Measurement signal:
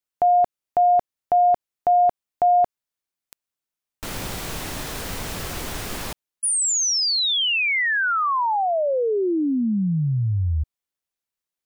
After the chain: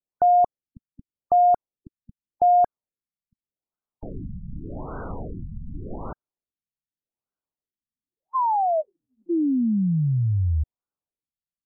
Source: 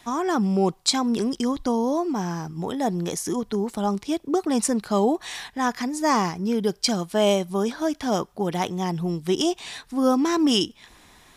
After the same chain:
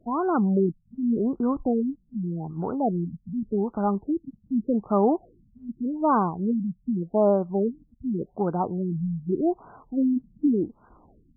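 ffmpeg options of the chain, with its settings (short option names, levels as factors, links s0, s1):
-af "afftfilt=real='re*lt(b*sr/1024,220*pow(1600/220,0.5+0.5*sin(2*PI*0.85*pts/sr)))':imag='im*lt(b*sr/1024,220*pow(1600/220,0.5+0.5*sin(2*PI*0.85*pts/sr)))':win_size=1024:overlap=0.75"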